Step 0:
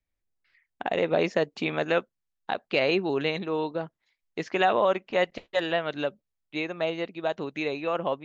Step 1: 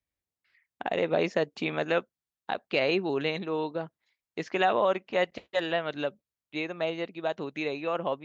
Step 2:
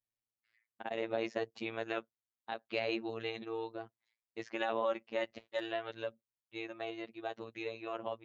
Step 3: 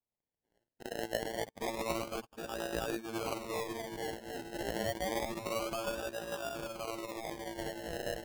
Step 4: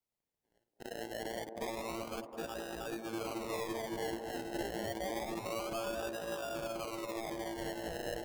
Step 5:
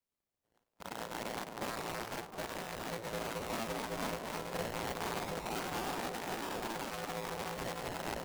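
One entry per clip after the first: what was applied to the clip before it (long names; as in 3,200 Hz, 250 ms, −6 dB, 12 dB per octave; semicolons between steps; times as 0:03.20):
high-pass filter 59 Hz; level −2 dB
phases set to zero 113 Hz; level −7 dB
feedback delay that plays each chunk backwards 382 ms, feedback 68%, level −1 dB; sample-and-hold swept by an LFO 29×, swing 60% 0.28 Hz; level −2.5 dB
brickwall limiter −32.5 dBFS, peak gain reduction 11.5 dB; delay with a band-pass on its return 213 ms, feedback 58%, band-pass 480 Hz, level −5.5 dB; level +1 dB
sub-harmonics by changed cycles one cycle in 2, inverted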